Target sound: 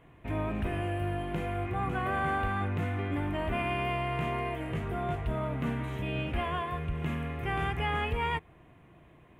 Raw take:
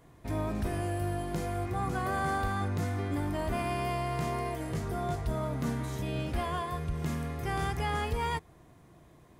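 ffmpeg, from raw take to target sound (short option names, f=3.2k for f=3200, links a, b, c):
-af "highshelf=f=3.7k:t=q:w=3:g=-10.5"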